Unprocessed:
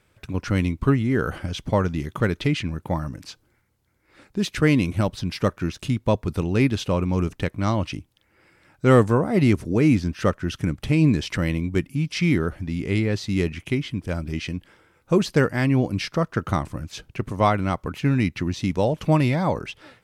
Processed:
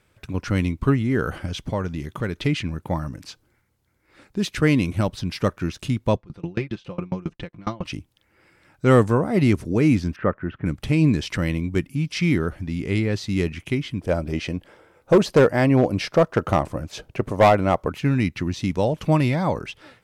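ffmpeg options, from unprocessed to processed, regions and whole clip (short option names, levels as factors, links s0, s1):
-filter_complex "[0:a]asettb=1/sr,asplit=3[s0][s1][s2];[s0]atrim=end=1.704[s3];[s1]atrim=start=1.7:end=2.39,asetpts=PTS-STARTPTS,afade=t=in:d=0.004:c=qsin,afade=t=out:st=0.686:d=0.004:c=qsin,acompressor=threshold=0.0355:ratio=1.5:attack=3.2:release=140:knee=1:detection=peak,bandreject=f=1300:w=29[s4];[s2]atrim=start=2.386[s5];[s3][s4]acrossfade=d=0.004:c1=hsin:c2=qsin[s6];[s6][s5]acrossfade=d=0.004:c1=qsin:c2=hsin,asettb=1/sr,asplit=3[s7][s8][s9];[s7]atrim=end=6.164[s10];[s8]atrim=start=6.16:end=7.85,asetpts=PTS-STARTPTS,afade=t=in:d=0.004:c=qsin,afade=t=out:st=1.686:d=0.004:c=qsin,lowpass=4500,aecho=1:1:5.8:0.68,atrim=end_sample=74529,aeval=exprs='val(0)*pow(10,-29*if(lt(mod(7.3*n/s,1),2*abs(7.3)/1000),1-mod(7.3*n/s,1)/(2*abs(7.3)/1000),(mod(7.3*n/s,1)-2*abs(7.3)/1000)/(1-2*abs(7.3)/1000))/20)':c=same[s11];[s9]atrim=start=7.846[s12];[s10][s11]acrossfade=d=0.004:c1=hsin:c2=qsin[s13];[s13][s12]acrossfade=d=0.004:c1=qsin:c2=hsin,asettb=1/sr,asplit=3[s14][s15][s16];[s14]atrim=end=10.164[s17];[s15]atrim=start=10.16:end=10.66,asetpts=PTS-STARTPTS,afade=t=in:d=0.004:c=qsin,afade=t=out:st=0.496:d=0.004:c=qsin,lowpass=f=2000:w=0.5412,lowpass=f=2000:w=1.3066,lowshelf=f=71:g=-10[s18];[s16]atrim=start=10.656[s19];[s17][s18]acrossfade=d=0.004:c1=hsin:c2=qsin[s20];[s20][s19]acrossfade=d=0.004:c1=qsin:c2=hsin,asettb=1/sr,asplit=3[s21][s22][s23];[s21]atrim=end=14.014[s24];[s22]atrim=start=14.01:end=17.9,asetpts=PTS-STARTPTS,afade=t=in:d=0.004:c=qsin,afade=t=out:st=3.886:d=0.004:c=qsin,equalizer=f=590:t=o:w=1.4:g=10.5,asoftclip=type=hard:threshold=0.355[s25];[s23]atrim=start=17.896[s26];[s24][s25]acrossfade=d=0.004:c1=hsin:c2=qsin[s27];[s27][s26]acrossfade=d=0.004:c1=qsin:c2=hsin"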